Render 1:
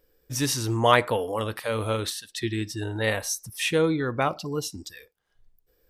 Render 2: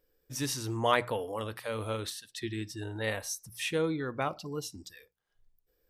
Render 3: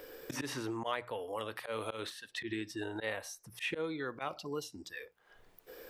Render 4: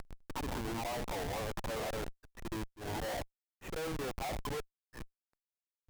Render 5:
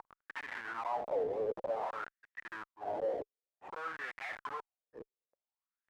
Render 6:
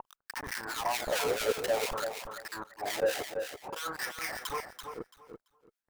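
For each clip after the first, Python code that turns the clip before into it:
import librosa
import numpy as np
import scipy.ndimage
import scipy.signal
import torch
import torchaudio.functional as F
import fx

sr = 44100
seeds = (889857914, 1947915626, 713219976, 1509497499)

y1 = fx.hum_notches(x, sr, base_hz=60, count=3)
y1 = F.gain(torch.from_numpy(y1), -7.5).numpy()
y2 = fx.bass_treble(y1, sr, bass_db=-11, treble_db=-7)
y2 = fx.auto_swell(y2, sr, attack_ms=113.0)
y2 = fx.band_squash(y2, sr, depth_pct=100)
y2 = F.gain(torch.from_numpy(y2), -1.5).numpy()
y3 = fx.auto_wah(y2, sr, base_hz=740.0, top_hz=1700.0, q=4.6, full_db=-35.5, direction='down')
y3 = fx.schmitt(y3, sr, flips_db=-55.0)
y3 = fx.auto_swell(y3, sr, attack_ms=144.0)
y3 = F.gain(torch.from_numpy(y3), 15.0).numpy()
y4 = fx.wah_lfo(y3, sr, hz=0.54, low_hz=430.0, high_hz=1900.0, q=5.9)
y4 = F.gain(torch.from_numpy(y4), 12.0).numpy()
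y5 = fx.halfwave_hold(y4, sr)
y5 = fx.harmonic_tremolo(y5, sr, hz=4.6, depth_pct=100, crossover_hz=1400.0)
y5 = fx.echo_feedback(y5, sr, ms=336, feedback_pct=19, wet_db=-7.0)
y5 = F.gain(torch.from_numpy(y5), 6.0).numpy()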